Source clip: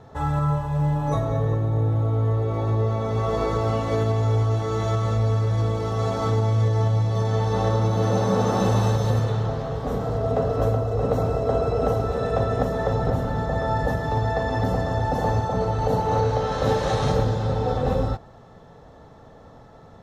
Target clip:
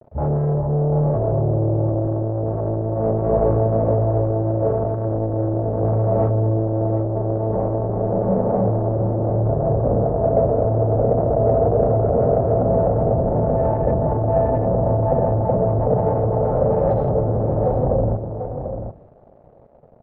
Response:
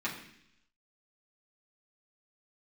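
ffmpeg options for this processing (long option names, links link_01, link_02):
-filter_complex "[0:a]aemphasis=mode=production:type=75kf,afwtdn=0.0355,lowshelf=frequency=240:width_type=q:width=1.5:gain=6,dynaudnorm=framelen=510:gausssize=7:maxgain=11.5dB,alimiter=limit=-10.5dB:level=0:latency=1:release=217,asoftclip=type=tanh:threshold=-23.5dB,acrusher=bits=8:mix=0:aa=0.000001,lowpass=frequency=610:width_type=q:width=3.9,aecho=1:1:742:0.398,asplit=2[link_01][link_02];[1:a]atrim=start_sample=2205,asetrate=48510,aresample=44100[link_03];[link_02][link_03]afir=irnorm=-1:irlink=0,volume=-18dB[link_04];[link_01][link_04]amix=inputs=2:normalize=0,volume=4.5dB"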